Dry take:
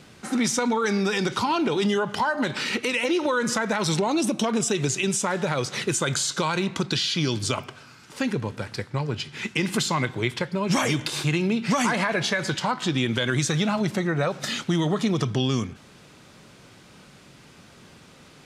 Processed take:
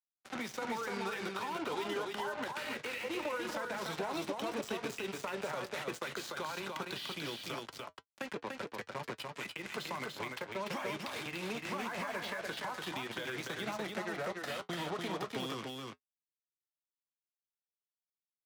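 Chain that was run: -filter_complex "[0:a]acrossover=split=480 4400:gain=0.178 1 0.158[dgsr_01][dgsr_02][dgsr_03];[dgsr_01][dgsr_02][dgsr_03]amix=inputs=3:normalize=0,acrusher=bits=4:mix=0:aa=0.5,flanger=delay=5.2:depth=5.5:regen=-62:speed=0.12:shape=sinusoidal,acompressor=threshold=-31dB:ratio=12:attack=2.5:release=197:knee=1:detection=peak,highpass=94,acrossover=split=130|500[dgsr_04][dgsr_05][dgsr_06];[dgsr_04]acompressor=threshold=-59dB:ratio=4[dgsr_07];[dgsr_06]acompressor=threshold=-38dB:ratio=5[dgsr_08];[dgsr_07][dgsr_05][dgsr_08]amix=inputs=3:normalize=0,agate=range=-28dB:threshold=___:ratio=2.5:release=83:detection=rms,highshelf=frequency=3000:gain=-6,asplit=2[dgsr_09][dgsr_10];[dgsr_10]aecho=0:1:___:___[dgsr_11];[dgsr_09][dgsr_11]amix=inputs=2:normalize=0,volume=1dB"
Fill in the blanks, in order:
-54dB, 293, 0.668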